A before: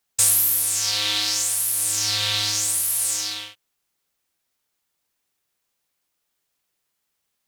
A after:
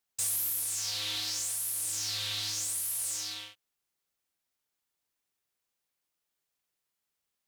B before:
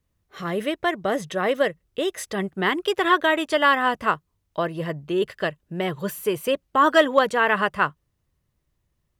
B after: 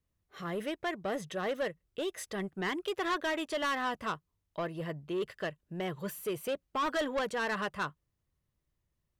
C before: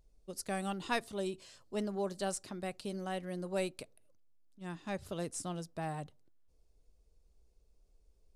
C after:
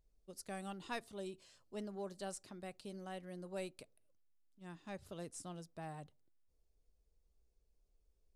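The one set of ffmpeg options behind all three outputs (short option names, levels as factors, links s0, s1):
-af "asoftclip=type=tanh:threshold=0.119,volume=0.376"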